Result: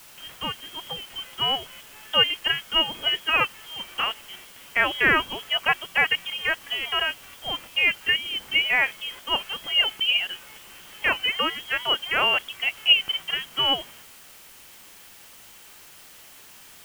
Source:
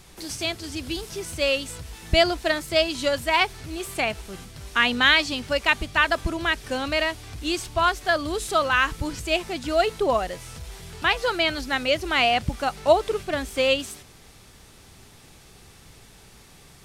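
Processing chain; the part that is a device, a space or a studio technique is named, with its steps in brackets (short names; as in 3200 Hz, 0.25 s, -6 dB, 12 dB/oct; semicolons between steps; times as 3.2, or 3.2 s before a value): scrambled radio voice (BPF 370–3000 Hz; inverted band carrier 3500 Hz; white noise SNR 22 dB)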